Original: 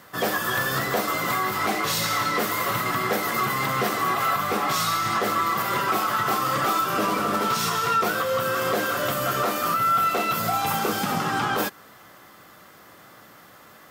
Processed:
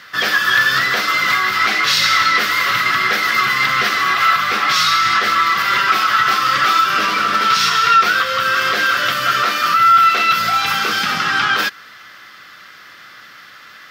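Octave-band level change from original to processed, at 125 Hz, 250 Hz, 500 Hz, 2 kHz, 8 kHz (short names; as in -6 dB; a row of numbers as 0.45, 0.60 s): -2.5, -2.5, -2.5, +13.5, +4.5 dB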